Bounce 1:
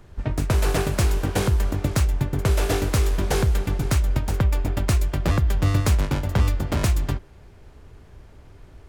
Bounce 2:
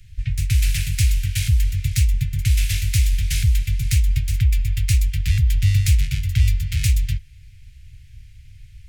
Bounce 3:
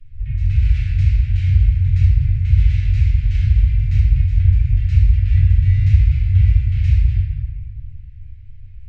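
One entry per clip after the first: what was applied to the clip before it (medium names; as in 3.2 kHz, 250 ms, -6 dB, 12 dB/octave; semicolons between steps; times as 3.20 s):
elliptic band-stop 120–2200 Hz, stop band 40 dB; trim +4.5 dB
tape spacing loss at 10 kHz 38 dB; reverberation RT60 1.7 s, pre-delay 4 ms, DRR -8.5 dB; trim -7 dB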